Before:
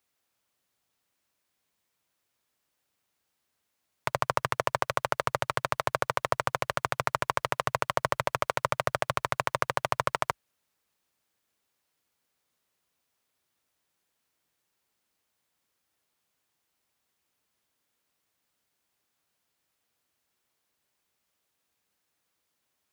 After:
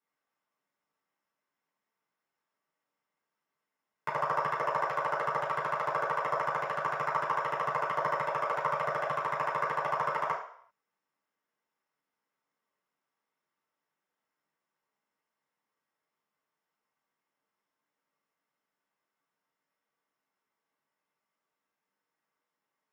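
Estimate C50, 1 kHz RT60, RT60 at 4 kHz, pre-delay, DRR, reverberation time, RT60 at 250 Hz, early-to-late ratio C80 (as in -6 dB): 5.5 dB, 0.65 s, 0.60 s, 3 ms, -7.5 dB, 0.60 s, 0.45 s, 9.5 dB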